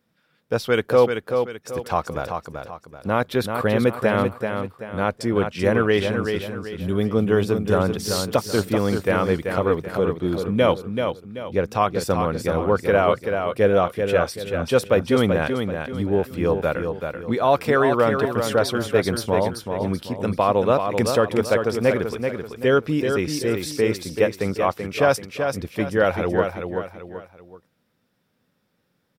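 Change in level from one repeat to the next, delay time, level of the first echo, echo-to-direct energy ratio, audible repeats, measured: -8.5 dB, 0.384 s, -6.0 dB, -5.5 dB, 3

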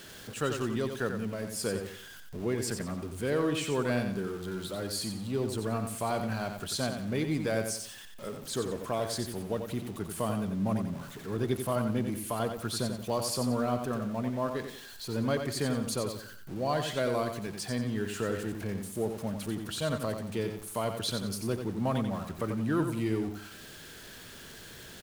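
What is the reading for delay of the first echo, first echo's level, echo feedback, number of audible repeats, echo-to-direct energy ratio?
90 ms, -7.0 dB, 35%, 4, -6.5 dB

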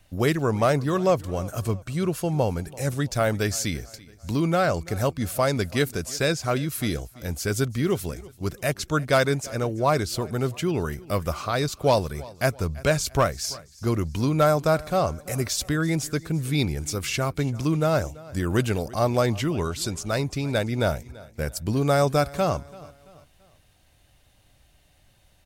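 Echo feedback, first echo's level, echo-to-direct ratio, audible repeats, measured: 41%, -21.0 dB, -20.0 dB, 2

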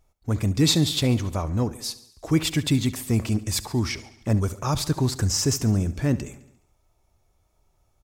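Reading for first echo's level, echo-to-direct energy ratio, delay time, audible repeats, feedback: -17.0 dB, -15.0 dB, 70 ms, 4, 59%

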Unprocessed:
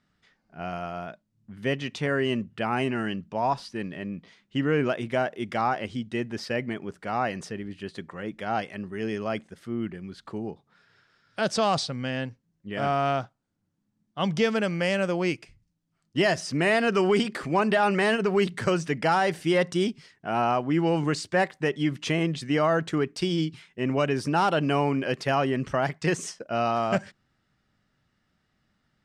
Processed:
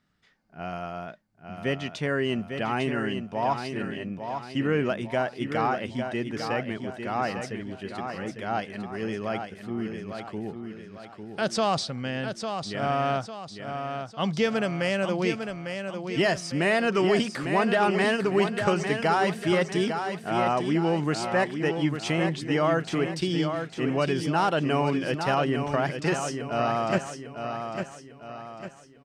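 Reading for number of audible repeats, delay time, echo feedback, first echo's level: 4, 0.851 s, 43%, -7.0 dB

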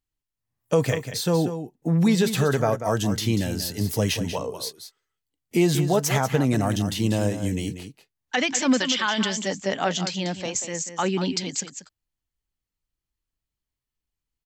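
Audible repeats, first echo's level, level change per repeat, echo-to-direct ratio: 1, -10.0 dB, no steady repeat, -10.0 dB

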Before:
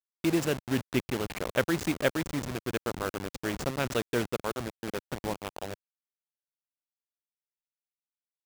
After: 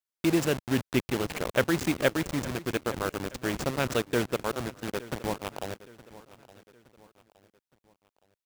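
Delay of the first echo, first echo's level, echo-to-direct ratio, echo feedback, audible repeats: 0.867 s, -18.5 dB, -17.5 dB, 42%, 3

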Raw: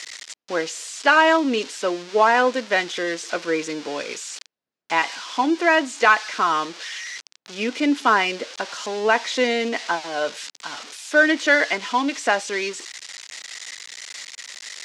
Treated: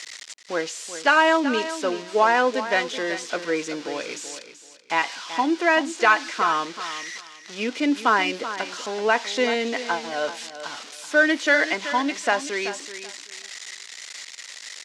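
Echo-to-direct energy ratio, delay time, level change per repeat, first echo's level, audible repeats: -12.0 dB, 0.381 s, -13.5 dB, -12.0 dB, 2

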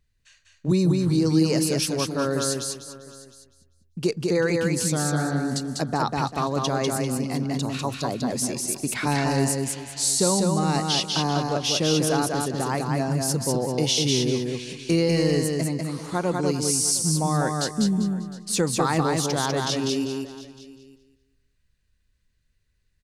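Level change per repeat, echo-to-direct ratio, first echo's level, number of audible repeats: no steady repeat, -2.5 dB, -3.0 dB, 6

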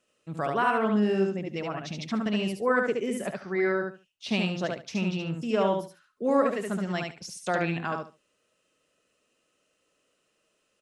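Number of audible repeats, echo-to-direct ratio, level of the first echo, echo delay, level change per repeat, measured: 3, -3.5 dB, -3.5 dB, 72 ms, -14.5 dB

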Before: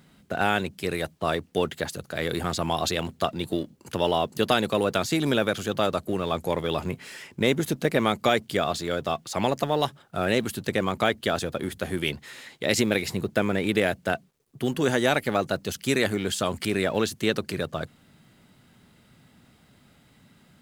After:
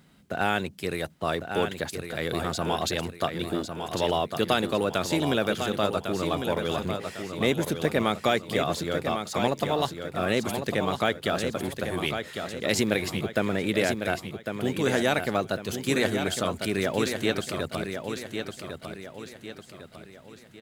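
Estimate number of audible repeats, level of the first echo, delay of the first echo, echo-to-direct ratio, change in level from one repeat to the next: 4, -7.0 dB, 1.102 s, -6.0 dB, -7.5 dB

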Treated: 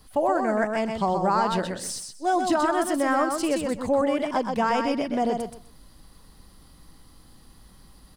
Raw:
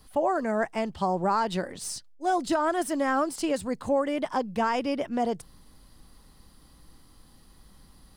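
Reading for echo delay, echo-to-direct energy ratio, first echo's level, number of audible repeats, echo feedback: 0.126 s, -5.0 dB, -5.0 dB, 3, 19%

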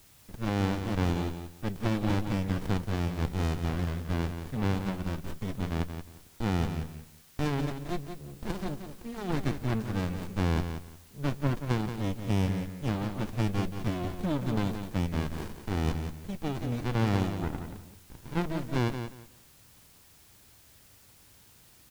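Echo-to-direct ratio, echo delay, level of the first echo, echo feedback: -8.5 dB, 0.178 s, -8.5 dB, 20%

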